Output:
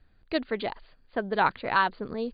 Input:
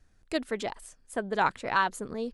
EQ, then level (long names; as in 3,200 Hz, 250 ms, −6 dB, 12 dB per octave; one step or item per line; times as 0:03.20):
linear-phase brick-wall low-pass 4,800 Hz
+2.0 dB